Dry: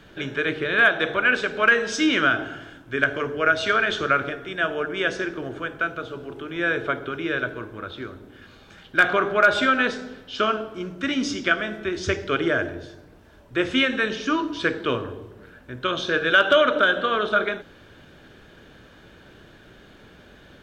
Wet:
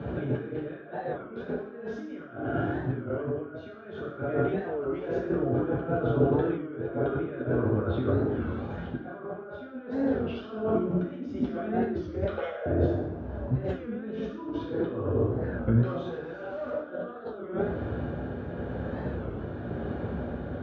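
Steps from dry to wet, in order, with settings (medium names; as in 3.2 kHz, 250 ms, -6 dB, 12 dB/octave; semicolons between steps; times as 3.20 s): 4.31–5.15 s: valve stage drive 22 dB, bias 0.3; 12.24–12.66 s: Chebyshev high-pass 470 Hz, order 10; 15.79–16.79 s: overload inside the chain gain 26 dB; compressor with a negative ratio -38 dBFS, ratio -1; low-pass 1 kHz 12 dB/octave; reverberation RT60 0.70 s, pre-delay 3 ms, DRR -3 dB; tremolo 0.95 Hz, depth 32%; warped record 33 1/3 rpm, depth 160 cents; trim -1.5 dB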